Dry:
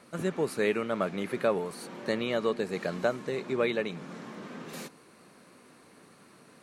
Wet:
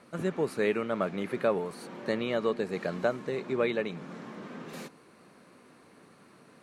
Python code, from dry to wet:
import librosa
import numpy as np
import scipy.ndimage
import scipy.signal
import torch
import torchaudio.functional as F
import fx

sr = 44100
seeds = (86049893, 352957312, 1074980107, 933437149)

y = fx.high_shelf(x, sr, hz=4000.0, db=-6.5)